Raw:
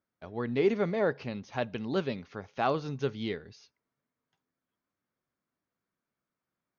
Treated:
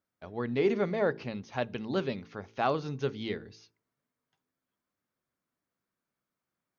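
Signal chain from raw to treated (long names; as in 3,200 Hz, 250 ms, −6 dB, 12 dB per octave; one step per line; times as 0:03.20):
hum removal 55.51 Hz, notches 8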